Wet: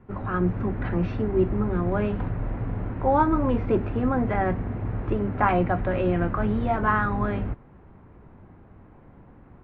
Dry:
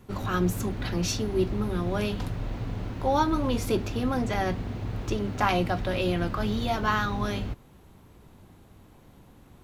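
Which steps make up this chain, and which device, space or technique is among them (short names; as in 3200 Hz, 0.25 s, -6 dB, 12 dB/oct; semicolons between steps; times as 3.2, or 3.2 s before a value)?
action camera in a waterproof case (LPF 2000 Hz 24 dB/oct; AGC gain up to 3.5 dB; AAC 48 kbps 16000 Hz)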